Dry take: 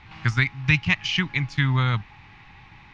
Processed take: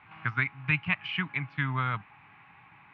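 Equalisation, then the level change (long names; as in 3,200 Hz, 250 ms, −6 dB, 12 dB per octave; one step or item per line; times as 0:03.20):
loudspeaker in its box 230–2,300 Hz, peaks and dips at 230 Hz −8 dB, 350 Hz −10 dB, 510 Hz −8 dB, 850 Hz −5 dB, 1,900 Hz −7 dB
0.0 dB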